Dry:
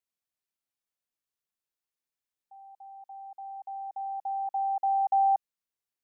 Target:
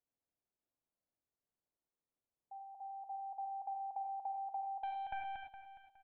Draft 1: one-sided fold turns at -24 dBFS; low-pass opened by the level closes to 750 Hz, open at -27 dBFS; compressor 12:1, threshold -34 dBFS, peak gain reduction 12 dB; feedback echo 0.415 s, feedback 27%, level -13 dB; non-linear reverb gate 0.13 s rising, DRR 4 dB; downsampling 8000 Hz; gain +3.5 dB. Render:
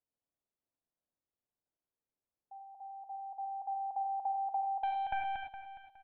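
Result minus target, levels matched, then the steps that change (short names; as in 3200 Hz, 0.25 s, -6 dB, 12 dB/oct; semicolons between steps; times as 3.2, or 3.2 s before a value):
compressor: peak gain reduction -7 dB
change: compressor 12:1, threshold -41.5 dBFS, peak gain reduction 19 dB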